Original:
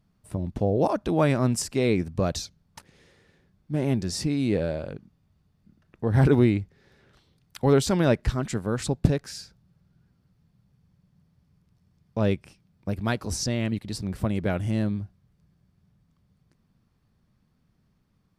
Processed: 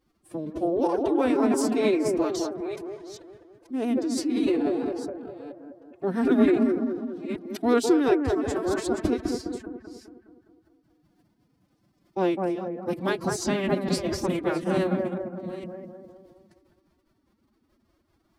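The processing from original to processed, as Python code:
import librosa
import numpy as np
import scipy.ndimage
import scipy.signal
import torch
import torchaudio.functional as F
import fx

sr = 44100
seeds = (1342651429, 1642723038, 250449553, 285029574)

p1 = fx.reverse_delay(x, sr, ms=460, wet_db=-11.5)
p2 = fx.low_shelf_res(p1, sr, hz=150.0, db=-12.0, q=3.0)
p3 = p2 + fx.echo_bbd(p2, sr, ms=206, stages=2048, feedback_pct=53, wet_db=-3.5, dry=0)
p4 = fx.pitch_keep_formants(p3, sr, semitones=9.5)
y = F.gain(torch.from_numpy(p4), -3.5).numpy()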